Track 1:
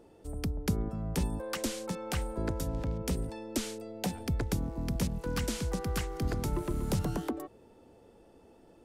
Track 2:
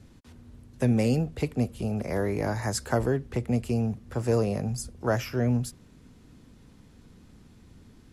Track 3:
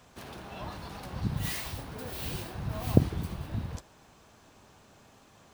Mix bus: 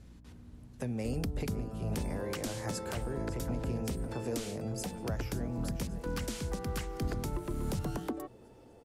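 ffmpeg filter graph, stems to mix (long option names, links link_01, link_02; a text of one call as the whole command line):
ffmpeg -i stem1.wav -i stem2.wav -i stem3.wav -filter_complex "[0:a]bandreject=frequency=60:width_type=h:width=6,bandreject=frequency=120:width_type=h:width=6,bandreject=frequency=180:width_type=h:width=6,adelay=800,volume=1dB[link_01];[1:a]acompressor=threshold=-33dB:ratio=2,aeval=exprs='val(0)+0.00282*(sin(2*PI*60*n/s)+sin(2*PI*2*60*n/s)/2+sin(2*PI*3*60*n/s)/3+sin(2*PI*4*60*n/s)/4+sin(2*PI*5*60*n/s)/5)':channel_layout=same,volume=-3.5dB,asplit=2[link_02][link_03];[link_03]volume=-12dB[link_04];[2:a]bandpass=frequency=110:width_type=q:width=1.2:csg=0,volume=-15.5dB[link_05];[link_04]aecho=0:1:558|1116|1674|2232|2790|3348|3906|4464|5022:1|0.59|0.348|0.205|0.121|0.0715|0.0422|0.0249|0.0147[link_06];[link_01][link_02][link_05][link_06]amix=inputs=4:normalize=0,alimiter=level_in=0.5dB:limit=-24dB:level=0:latency=1:release=382,volume=-0.5dB" out.wav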